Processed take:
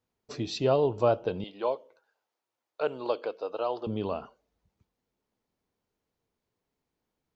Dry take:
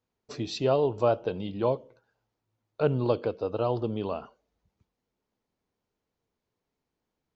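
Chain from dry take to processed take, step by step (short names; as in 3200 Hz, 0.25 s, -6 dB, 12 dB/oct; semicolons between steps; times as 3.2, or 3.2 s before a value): 1.44–3.87 HPF 520 Hz 12 dB/oct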